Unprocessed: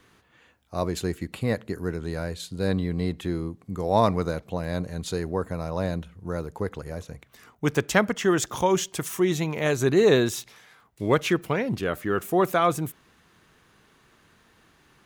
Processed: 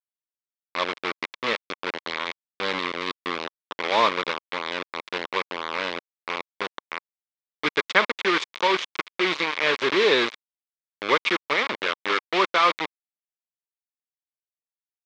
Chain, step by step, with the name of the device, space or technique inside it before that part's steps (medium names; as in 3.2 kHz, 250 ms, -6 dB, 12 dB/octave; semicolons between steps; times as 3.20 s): hand-held game console (bit crusher 4-bit; cabinet simulation 430–4600 Hz, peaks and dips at 710 Hz -8 dB, 1.1 kHz +6 dB, 2.2 kHz +8 dB, 3.5 kHz +5 dB); trim +1 dB